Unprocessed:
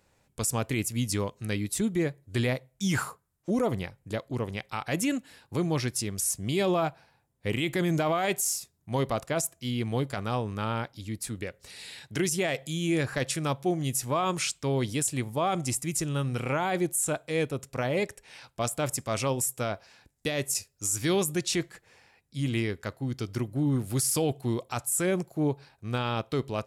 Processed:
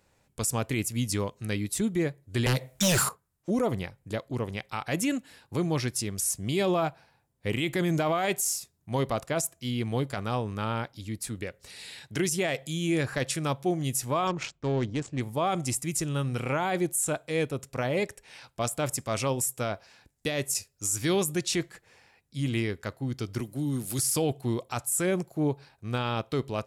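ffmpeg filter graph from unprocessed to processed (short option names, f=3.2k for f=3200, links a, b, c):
-filter_complex "[0:a]asettb=1/sr,asplit=3[a][b][c];[a]atrim=end=2.464[d];[b]atrim=start=2.46:end=3.09,asetpts=PTS-STARTPTS,afade=t=in:d=0.004:c=qsin,afade=t=out:st=0.626:d=0.004:c=qsin,acrossover=split=210|3000[e][f][g];[f]acompressor=threshold=-40dB:ratio=6:attack=3.2:release=140:knee=2.83:detection=peak[h];[e][h][g]amix=inputs=3:normalize=0,aeval=exprs='0.119*sin(PI/2*3.55*val(0)/0.119)':c=same,lowshelf=f=110:g=-8[i];[c]atrim=start=3.086[j];[d][i]acrossfade=d=0.004:c1=hsin:c2=qsin[k];[k][j]acrossfade=d=0.004:c1=qsin:c2=hsin,asettb=1/sr,asplit=3[l][m][n];[l]atrim=end=14.274[o];[m]atrim=start=14.27:end=15.21,asetpts=PTS-STARTPTS,afade=t=in:d=0.004:c=qsin,afade=t=out:st=0.936:d=0.004:c=qsin,adynamicsmooth=sensitivity=2.5:basefreq=930,lowpass=f=7.1k:t=q:w=2.3[p];[n]atrim=start=15.206[q];[o][p]acrossfade=d=0.004:c1=hsin:c2=qsin[r];[r][q]acrossfade=d=0.004:c1=qsin:c2=hsin,asettb=1/sr,asplit=3[s][t][u];[s]atrim=end=23.404[v];[t]atrim=start=23.4:end=23.99,asetpts=PTS-STARTPTS,afade=t=in:d=0.004:c=qsin,afade=t=out:st=0.586:d=0.004:c=qsin,highpass=150,highshelf=f=3.7k:g=11,acrossover=split=270|3000[w][x][y];[x]acompressor=threshold=-49dB:ratio=1.5:attack=3.2:release=140:knee=2.83:detection=peak[z];[w][z][y]amix=inputs=3:normalize=0[aa];[u]atrim=start=23.986[ab];[v][aa]acrossfade=d=0.004:c1=hsin:c2=qsin[ac];[ac][ab]acrossfade=d=0.004:c1=qsin:c2=hsin"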